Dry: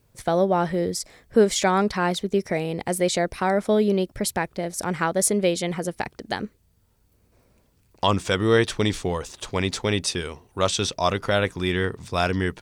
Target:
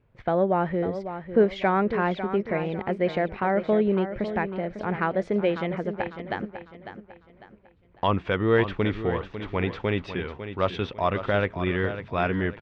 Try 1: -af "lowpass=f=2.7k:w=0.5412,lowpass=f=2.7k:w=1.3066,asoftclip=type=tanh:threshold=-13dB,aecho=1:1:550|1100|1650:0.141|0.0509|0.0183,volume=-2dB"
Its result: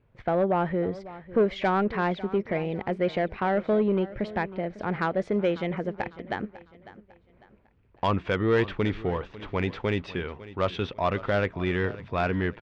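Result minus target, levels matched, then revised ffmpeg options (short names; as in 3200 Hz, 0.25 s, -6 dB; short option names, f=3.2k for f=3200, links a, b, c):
soft clip: distortion +17 dB; echo-to-direct -6.5 dB
-af "lowpass=f=2.7k:w=0.5412,lowpass=f=2.7k:w=1.3066,asoftclip=type=tanh:threshold=-2.5dB,aecho=1:1:550|1100|1650|2200:0.299|0.107|0.0387|0.0139,volume=-2dB"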